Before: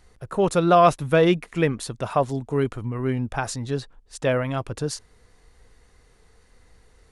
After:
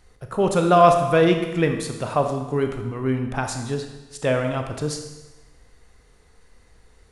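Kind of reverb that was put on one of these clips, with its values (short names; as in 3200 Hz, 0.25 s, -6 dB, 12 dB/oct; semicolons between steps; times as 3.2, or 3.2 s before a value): Schroeder reverb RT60 1.1 s, combs from 27 ms, DRR 5 dB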